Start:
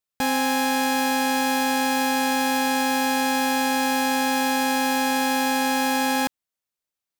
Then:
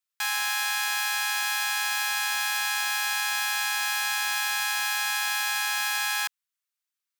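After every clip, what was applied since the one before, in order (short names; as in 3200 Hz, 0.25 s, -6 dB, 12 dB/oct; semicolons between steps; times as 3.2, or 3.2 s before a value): inverse Chebyshev high-pass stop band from 540 Hz, stop band 40 dB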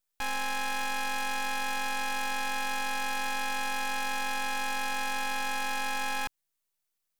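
high shelf 4600 Hz +11.5 dB; half-wave rectifier; gain -1.5 dB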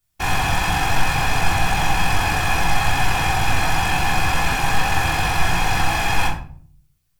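whisperiser; shoebox room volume 530 m³, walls furnished, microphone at 3.3 m; gain +6 dB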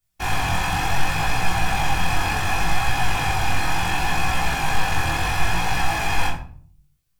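chorus 0.69 Hz, delay 17 ms, depth 7.7 ms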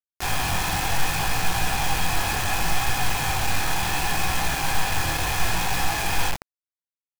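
bit-crush 4-bit; gain -3.5 dB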